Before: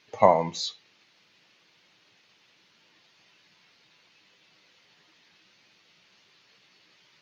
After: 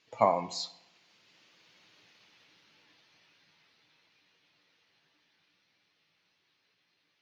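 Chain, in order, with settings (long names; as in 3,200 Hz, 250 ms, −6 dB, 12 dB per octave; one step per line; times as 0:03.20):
source passing by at 0:01.96, 23 m/s, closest 22 metres
feedback delay network reverb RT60 0.94 s, low-frequency decay 0.95×, high-frequency decay 0.7×, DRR 14.5 dB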